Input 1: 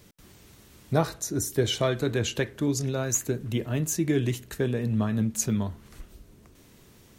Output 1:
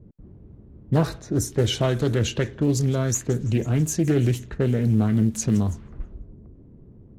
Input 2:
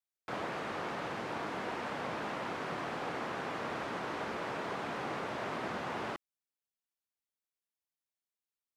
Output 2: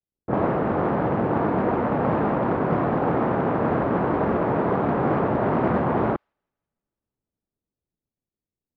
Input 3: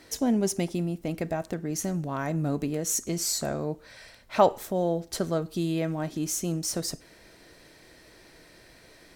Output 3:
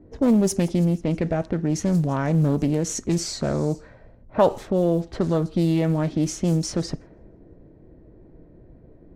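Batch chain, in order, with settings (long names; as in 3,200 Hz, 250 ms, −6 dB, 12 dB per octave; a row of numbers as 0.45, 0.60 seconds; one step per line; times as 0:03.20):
low-shelf EQ 310 Hz +8.5 dB
delay with a high-pass on its return 164 ms, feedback 71%, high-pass 5,100 Hz, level −18.5 dB
in parallel at +2 dB: brickwall limiter −17.5 dBFS
on the sum: log-companded quantiser 8 bits
low-pass that shuts in the quiet parts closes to 380 Hz, open at −13.5 dBFS
highs frequency-modulated by the lows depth 0.32 ms
loudness normalisation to −23 LKFS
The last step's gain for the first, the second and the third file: −5.0, +8.0, −3.0 decibels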